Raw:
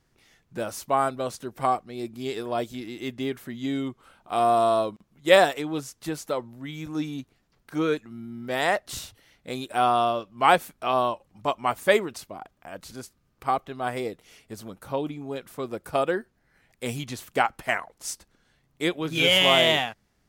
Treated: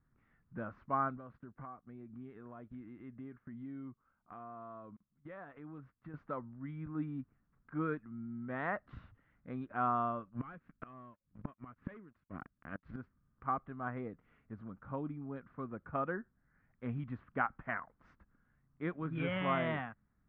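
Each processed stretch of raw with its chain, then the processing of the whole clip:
1.17–6.14 LPF 4200 Hz + compressor 3:1, threshold -39 dBFS + gate -50 dBFS, range -13 dB
10.29–12.96 bell 840 Hz -11.5 dB 1.1 oct + sample leveller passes 3 + flipped gate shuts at -18 dBFS, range -24 dB
whole clip: LPF 1500 Hz 24 dB/oct; band shelf 550 Hz -10 dB; gain -5 dB

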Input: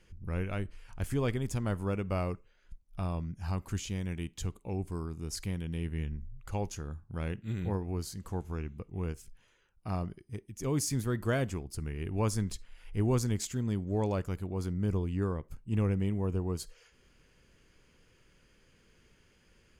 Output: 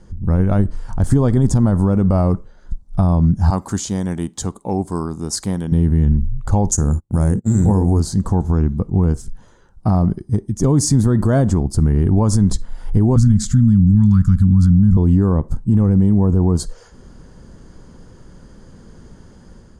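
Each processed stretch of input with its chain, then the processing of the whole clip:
3.5–5.72 HPF 550 Hz 6 dB/oct + high shelf 9000 Hz +6 dB
6.71–8 notches 60/120/180/240/300/360/420/480/540 Hz + gate -45 dBFS, range -35 dB + resonant high shelf 5300 Hz +13.5 dB, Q 3
13.16–14.97 Chebyshev band-stop 230–1300 Hz, order 3 + tilt -2 dB/oct + mismatched tape noise reduction encoder only
whole clip: EQ curve 130 Hz 0 dB, 210 Hz +3 dB, 430 Hz -5 dB, 850 Hz -1 dB, 1800 Hz -13 dB, 2500 Hz -26 dB, 3700 Hz -12 dB, 8900 Hz -8 dB, 13000 Hz -24 dB; AGC gain up to 4.5 dB; maximiser +24 dB; gain -4.5 dB

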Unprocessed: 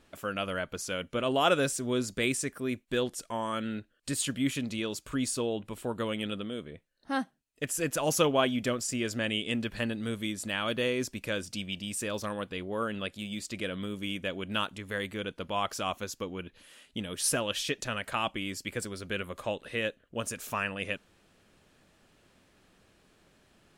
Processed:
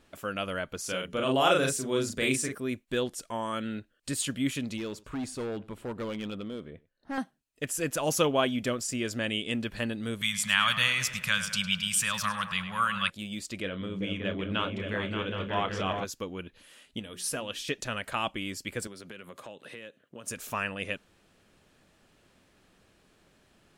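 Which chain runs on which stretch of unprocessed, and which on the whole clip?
0.8–2.55 notches 60/120/180/240/300/360/420 Hz + doubler 38 ms -2.5 dB
4.77–7.18 high shelf 3600 Hz -11.5 dB + overloaded stage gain 30.5 dB + echo 98 ms -23 dB
10.21–13.1 EQ curve 110 Hz 0 dB, 170 Hz +10 dB, 320 Hz -29 dB, 1100 Hz +9 dB + tape echo 0.103 s, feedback 65%, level -9.5 dB, low-pass 3600 Hz
13.62–16.05 LPF 4200 Hz + doubler 31 ms -10 dB + repeats that get brighter 0.192 s, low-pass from 200 Hz, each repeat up 2 oct, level 0 dB
16.99–17.68 notches 60/120/180/240/300/360/420 Hz + resonator 240 Hz, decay 0.16 s, mix 50%
18.87–20.28 HPF 120 Hz 24 dB/oct + compressor 5:1, threshold -41 dBFS
whole clip: dry

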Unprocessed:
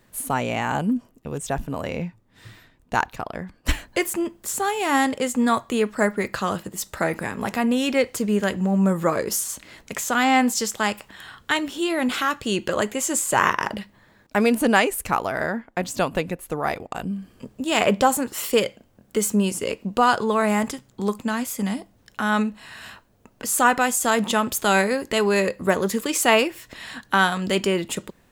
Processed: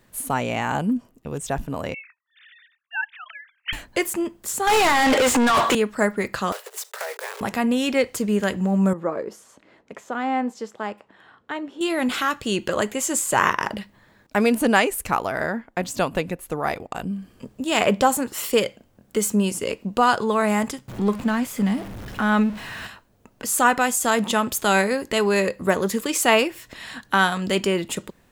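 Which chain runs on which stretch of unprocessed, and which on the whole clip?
1.94–3.73 sine-wave speech + HPF 1500 Hz 24 dB/oct + tilt +2.5 dB/oct
4.67–5.75 HPF 220 Hz + negative-ratio compressor -28 dBFS + overdrive pedal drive 36 dB, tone 3700 Hz, clips at -10 dBFS
6.52–7.41 block floating point 3-bit + steep high-pass 400 Hz 96 dB/oct + compressor 4:1, threshold -27 dBFS
8.93–11.81 band-pass 380 Hz, Q 0.7 + low shelf 400 Hz -6 dB
20.88–22.87 zero-crossing step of -32 dBFS + tone controls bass +4 dB, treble -8 dB
whole clip: dry

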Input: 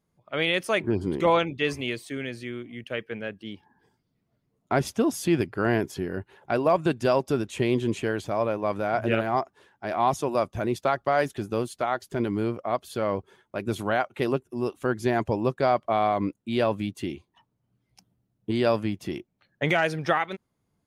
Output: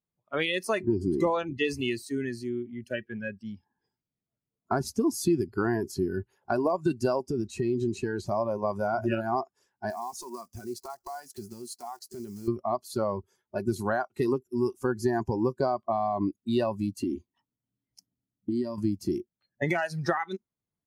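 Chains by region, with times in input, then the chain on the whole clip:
7.23–8.27 high shelf 8400 Hz -11 dB + compressor, threshold -25 dBFS
9.9–12.48 block floating point 5-bit + low shelf 180 Hz -11 dB + compressor 5:1, threshold -34 dBFS
17.02–18.78 compressor 5:1, threshold -33 dBFS + small resonant body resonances 260/1900/3100 Hz, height 9 dB, ringing for 40 ms
whole clip: compressor 8:1, threshold -25 dBFS; spectral noise reduction 19 dB; dynamic EQ 340 Hz, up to +4 dB, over -42 dBFS, Q 2.5; gain +2 dB

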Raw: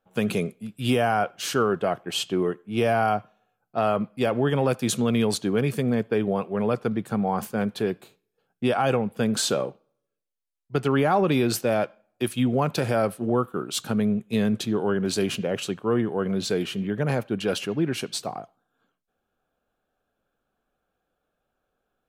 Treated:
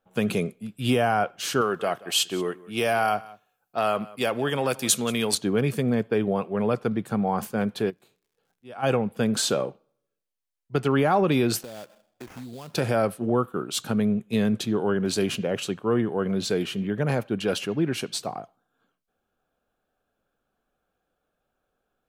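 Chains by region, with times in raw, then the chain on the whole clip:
1.61–5.35 tilt +2.5 dB/oct + echo 0.182 s -20.5 dB
7.89–8.82 auto swell 0.761 s + crackle 180/s -62 dBFS
11.63–12.75 compressor 5:1, threshold -38 dBFS + sample-rate reducer 4100 Hz, jitter 20%
whole clip: dry

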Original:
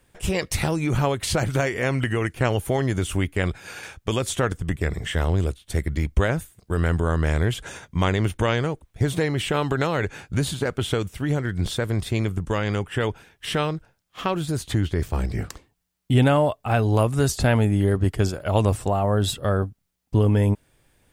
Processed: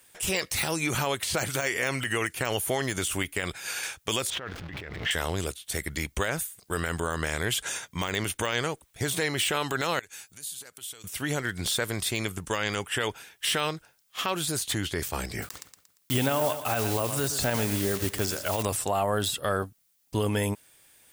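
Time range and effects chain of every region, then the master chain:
4.3–5.11 zero-crossing step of -31.5 dBFS + negative-ratio compressor -29 dBFS + air absorption 300 m
9.99–11.04 pre-emphasis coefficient 0.8 + compressor 4:1, threshold -45 dBFS
15.42–18.63 block floating point 5-bit + feedback echo 0.116 s, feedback 40%, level -14.5 dB
whole clip: de-esser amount 70%; tilt +3.5 dB/oct; limiter -15.5 dBFS

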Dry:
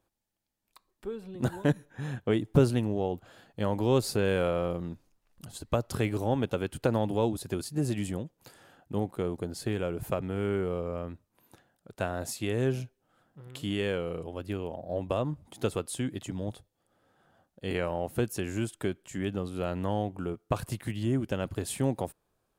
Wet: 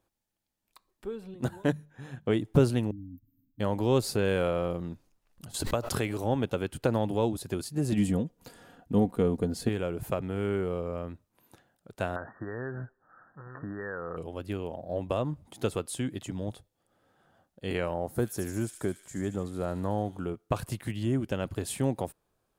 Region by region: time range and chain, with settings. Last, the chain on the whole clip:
1.34–2.26 notches 50/100/150/200 Hz + upward expander, over -34 dBFS
2.91–3.6 brick-wall FIR band-stop 290–13000 Hz + fixed phaser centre 820 Hz, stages 8 + comb 6.7 ms, depth 40%
5.54–6.24 low shelf 330 Hz -5.5 dB + backwards sustainer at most 52 dB/s
7.92–9.69 low shelf 440 Hz +8 dB + comb 4.2 ms, depth 47%
12.16–14.17 bell 1400 Hz +14.5 dB 1.6 oct + compressor 8:1, threshold -31 dBFS + brick-wall FIR low-pass 1900 Hz
17.94–20.2 bell 2800 Hz -14.5 dB 0.59 oct + thin delay 74 ms, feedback 71%, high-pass 3300 Hz, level -5 dB
whole clip: dry

